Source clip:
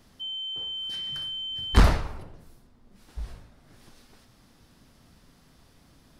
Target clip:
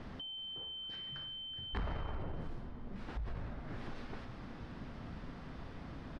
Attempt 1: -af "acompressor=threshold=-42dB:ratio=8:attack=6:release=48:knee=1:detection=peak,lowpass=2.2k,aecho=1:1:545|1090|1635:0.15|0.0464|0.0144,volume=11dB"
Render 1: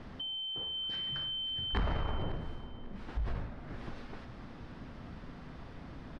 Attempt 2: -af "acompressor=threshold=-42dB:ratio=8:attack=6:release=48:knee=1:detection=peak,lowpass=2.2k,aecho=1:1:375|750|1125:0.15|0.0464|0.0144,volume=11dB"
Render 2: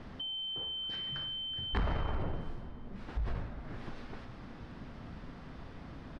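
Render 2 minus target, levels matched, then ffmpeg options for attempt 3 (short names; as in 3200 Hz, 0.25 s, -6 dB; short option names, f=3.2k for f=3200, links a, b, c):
compressor: peak gain reduction -6 dB
-af "acompressor=threshold=-49dB:ratio=8:attack=6:release=48:knee=1:detection=peak,lowpass=2.2k,aecho=1:1:375|750|1125:0.15|0.0464|0.0144,volume=11dB"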